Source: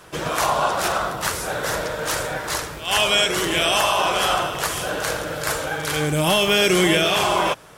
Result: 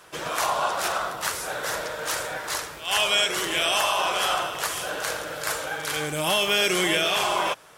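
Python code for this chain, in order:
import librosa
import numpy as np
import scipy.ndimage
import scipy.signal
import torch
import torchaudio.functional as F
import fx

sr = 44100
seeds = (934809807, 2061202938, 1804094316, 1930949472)

y = fx.low_shelf(x, sr, hz=330.0, db=-11.0)
y = y * librosa.db_to_amplitude(-3.0)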